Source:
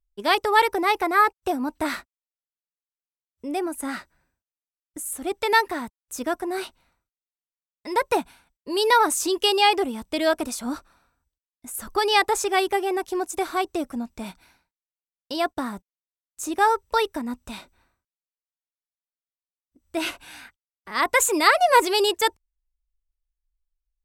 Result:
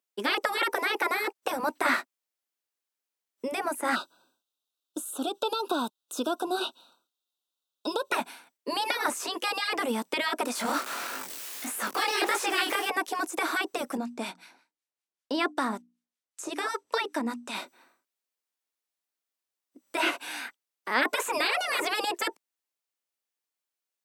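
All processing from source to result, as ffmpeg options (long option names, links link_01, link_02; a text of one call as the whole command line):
ffmpeg -i in.wav -filter_complex "[0:a]asettb=1/sr,asplit=3[link_01][link_02][link_03];[link_01]atrim=end=3.954[link_04];[link_02]atrim=start=3.95:end=8.12,asetpts=PTS-STARTPTS,afade=type=in:duration=0.004:curve=qsin,afade=type=out:start_time=4.166:duration=0.004:curve=qsin,acompressor=threshold=-29dB:ratio=6:attack=3.2:release=140:knee=1:detection=peak,asuperstop=centerf=2000:order=12:qfactor=2,equalizer=frequency=3700:width_type=o:width=0.29:gain=13[link_05];[link_03]atrim=start=8.116[link_06];[link_04][link_05]acrossfade=duration=0.004:curve1=hsin:curve2=qsin[link_07];[link_07][link_06]acrossfade=duration=0.004:curve1=qsin:curve2=hsin,asettb=1/sr,asplit=3[link_08][link_09][link_10];[link_08]atrim=end=10.554[link_11];[link_09]atrim=start=10.55:end=12.9,asetpts=PTS-STARTPTS,afade=type=in:duration=0.004:curve=qsin,afade=type=out:start_time=2.346:duration=0.004:curve=qsin,aeval=exprs='val(0)+0.5*0.0178*sgn(val(0))':channel_layout=same,highshelf=frequency=2200:gain=12,flanger=delay=19:depth=8:speed=1.6[link_12];[link_10]atrim=start=12.896[link_13];[link_11][link_12]acrossfade=duration=0.004:curve1=hsin:curve2=qsin[link_14];[link_14][link_13]acrossfade=duration=0.004:curve1=qsin:curve2=hsin,asettb=1/sr,asplit=3[link_15][link_16][link_17];[link_15]atrim=end=13.974[link_18];[link_16]atrim=start=13.97:end=17.55,asetpts=PTS-STARTPTS,afade=type=in:duration=0.004:curve=qsin,afade=type=out:start_time=3.576:duration=0.004:curve=qsin,lowpass=9600,acrossover=split=1100[link_19][link_20];[link_19]aeval=exprs='val(0)*(1-0.7/2+0.7/2*cos(2*PI*5.2*n/s))':channel_layout=same[link_21];[link_20]aeval=exprs='val(0)*(1-0.7/2-0.7/2*cos(2*PI*5.2*n/s))':channel_layout=same[link_22];[link_21][link_22]amix=inputs=2:normalize=0,bandreject=frequency=60:width_type=h:width=6,bandreject=frequency=120:width_type=h:width=6,bandreject=frequency=180:width_type=h:width=6,bandreject=frequency=240:width_type=h:width=6,bandreject=frequency=300:width_type=h:width=6[link_23];[link_17]atrim=start=17.546[link_24];[link_18][link_23]acrossfade=duration=0.004:curve1=hsin:curve2=qsin[link_25];[link_25][link_24]acrossfade=duration=0.004:curve1=qsin:curve2=hsin,highpass=frequency=250:width=0.5412,highpass=frequency=250:width=1.3066,afftfilt=real='re*lt(hypot(re,im),0.251)':imag='im*lt(hypot(re,im),0.251)':win_size=1024:overlap=0.75,acrossover=split=2500[link_26][link_27];[link_27]acompressor=threshold=-43dB:ratio=4:attack=1:release=60[link_28];[link_26][link_28]amix=inputs=2:normalize=0,volume=7dB" out.wav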